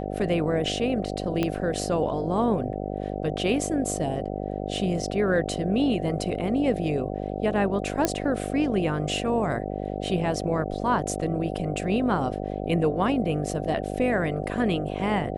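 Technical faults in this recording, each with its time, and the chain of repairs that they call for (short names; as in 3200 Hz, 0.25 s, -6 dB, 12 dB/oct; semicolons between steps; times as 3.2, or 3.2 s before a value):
buzz 50 Hz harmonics 15 -31 dBFS
1.43 pop -12 dBFS
8.05 pop -7 dBFS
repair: de-click; de-hum 50 Hz, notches 15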